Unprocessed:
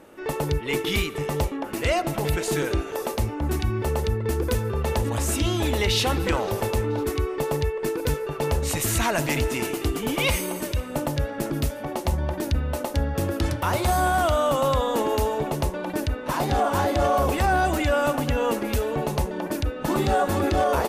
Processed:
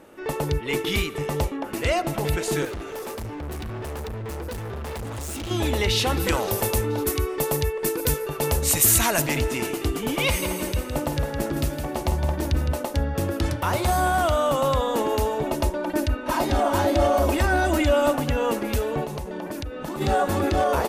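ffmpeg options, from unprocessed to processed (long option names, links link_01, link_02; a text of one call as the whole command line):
ffmpeg -i in.wav -filter_complex "[0:a]asettb=1/sr,asplit=3[link_01][link_02][link_03];[link_01]atrim=end=2.654[link_04];[link_02]atrim=start=2.65:end=5.51,asetpts=PTS-STARTPTS,afade=type=in:duration=0.004:curve=qsin,afade=type=out:start_time=2.856:duration=0.004:curve=qsin,volume=30.5dB,asoftclip=hard,volume=-30.5dB[link_05];[link_03]atrim=start=5.506[link_06];[link_04][link_05]acrossfade=duration=0.004:curve1=hsin:curve2=qsin[link_07];[link_07][link_06]acrossfade=duration=0.004:curve1=qsin:curve2=hsin,asettb=1/sr,asplit=3[link_08][link_09][link_10];[link_08]atrim=end=6.174[link_11];[link_09]atrim=start=6.17:end=9.22,asetpts=PTS-STARTPTS,afade=type=in:duration=0.004:curve=qsin,afade=type=out:start_time=3.046:duration=0.004:curve=qsin,aemphasis=mode=production:type=50kf[link_12];[link_10]atrim=start=9.216[link_13];[link_11][link_12]acrossfade=duration=0.004:curve1=hsin:curve2=qsin[link_14];[link_14][link_13]acrossfade=duration=0.004:curve1=qsin:curve2=hsin,asettb=1/sr,asplit=3[link_15][link_16][link_17];[link_15]atrim=end=10.264[link_18];[link_16]atrim=start=10.26:end=12.73,asetpts=PTS-STARTPTS,afade=type=in:duration=0.004:curve=qsin,afade=type=out:start_time=2.466:duration=0.004:curve=qsin,aecho=1:1:162|324|486|648|810:0.422|0.177|0.0744|0.0312|0.0131,atrim=end_sample=108927[link_19];[link_17]atrim=start=12.726[link_20];[link_18][link_19]acrossfade=duration=0.004:curve1=hsin:curve2=qsin[link_21];[link_21][link_20]acrossfade=duration=0.004:curve1=qsin:curve2=hsin,asettb=1/sr,asplit=3[link_22][link_23][link_24];[link_22]atrim=end=15.434[link_25];[link_23]atrim=start=15.43:end=18.14,asetpts=PTS-STARTPTS,afade=type=in:duration=0.004:curve=qsin,afade=type=out:start_time=2.706:duration=0.004:curve=qsin,aecho=1:1:3.2:0.65,atrim=end_sample=119511[link_26];[link_24]atrim=start=18.136[link_27];[link_25][link_26]acrossfade=duration=0.004:curve1=hsin:curve2=qsin[link_28];[link_28][link_27]acrossfade=duration=0.004:curve1=qsin:curve2=hsin,asplit=3[link_29][link_30][link_31];[link_29]afade=type=out:start_time=19.04:duration=0.02[link_32];[link_30]acompressor=threshold=-27dB:ratio=12:attack=3.2:release=140:knee=1:detection=peak,afade=type=in:start_time=19.04:duration=0.02,afade=type=out:start_time=20:duration=0.02[link_33];[link_31]afade=type=in:start_time=20:duration=0.02[link_34];[link_32][link_33][link_34]amix=inputs=3:normalize=0" out.wav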